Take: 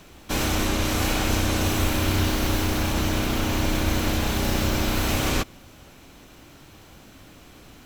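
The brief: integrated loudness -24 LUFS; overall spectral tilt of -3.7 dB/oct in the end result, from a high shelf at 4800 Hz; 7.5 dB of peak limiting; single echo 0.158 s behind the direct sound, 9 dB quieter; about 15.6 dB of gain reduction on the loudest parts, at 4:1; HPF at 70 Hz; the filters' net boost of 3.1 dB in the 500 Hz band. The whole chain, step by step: HPF 70 Hz; bell 500 Hz +4 dB; high shelf 4800 Hz +5 dB; compressor 4:1, threshold -39 dBFS; limiter -31 dBFS; echo 0.158 s -9 dB; gain +17 dB

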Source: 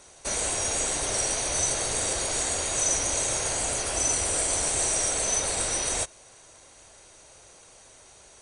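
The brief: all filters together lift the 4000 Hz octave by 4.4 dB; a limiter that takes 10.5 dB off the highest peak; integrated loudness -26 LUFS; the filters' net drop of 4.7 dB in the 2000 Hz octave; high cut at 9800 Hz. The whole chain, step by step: LPF 9800 Hz; bell 2000 Hz -8.5 dB; bell 4000 Hz +7.5 dB; gain +3 dB; limiter -19 dBFS

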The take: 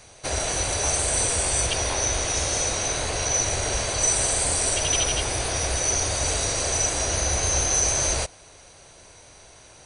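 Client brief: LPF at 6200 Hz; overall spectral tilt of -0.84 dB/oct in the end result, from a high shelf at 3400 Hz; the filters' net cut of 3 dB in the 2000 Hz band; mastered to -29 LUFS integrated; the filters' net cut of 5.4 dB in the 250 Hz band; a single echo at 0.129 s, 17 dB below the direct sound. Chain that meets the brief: LPF 6200 Hz; bell 250 Hz -8.5 dB; bell 2000 Hz -6 dB; high shelf 3400 Hz +6.5 dB; echo 0.129 s -17 dB; gain -7.5 dB

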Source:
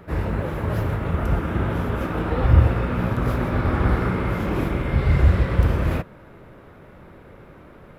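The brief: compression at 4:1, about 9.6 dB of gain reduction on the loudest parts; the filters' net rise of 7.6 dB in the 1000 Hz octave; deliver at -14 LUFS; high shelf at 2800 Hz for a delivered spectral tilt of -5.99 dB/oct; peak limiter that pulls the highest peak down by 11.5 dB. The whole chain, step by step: bell 1000 Hz +8.5 dB; high shelf 2800 Hz +7 dB; compressor 4:1, threshold -20 dBFS; gain +17.5 dB; limiter -5 dBFS

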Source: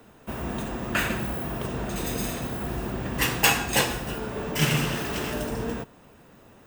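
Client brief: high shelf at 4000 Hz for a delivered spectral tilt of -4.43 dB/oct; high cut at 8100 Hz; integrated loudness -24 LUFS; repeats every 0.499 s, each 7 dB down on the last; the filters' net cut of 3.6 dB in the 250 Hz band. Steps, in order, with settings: LPF 8100 Hz; bell 250 Hz -5 dB; high shelf 4000 Hz -7.5 dB; feedback echo 0.499 s, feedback 45%, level -7 dB; gain +5 dB

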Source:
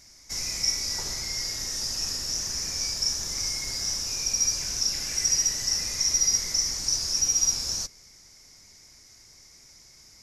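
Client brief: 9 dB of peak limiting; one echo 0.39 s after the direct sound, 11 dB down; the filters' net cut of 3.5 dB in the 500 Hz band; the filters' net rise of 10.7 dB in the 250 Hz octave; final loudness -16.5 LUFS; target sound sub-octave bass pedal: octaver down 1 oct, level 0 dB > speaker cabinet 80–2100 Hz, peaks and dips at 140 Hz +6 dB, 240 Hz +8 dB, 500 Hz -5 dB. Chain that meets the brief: bell 250 Hz +8.5 dB; bell 500 Hz -6 dB; limiter -20 dBFS; echo 0.39 s -11 dB; octaver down 1 oct, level 0 dB; speaker cabinet 80–2100 Hz, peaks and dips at 140 Hz +6 dB, 240 Hz +8 dB, 500 Hz -5 dB; gain +24 dB

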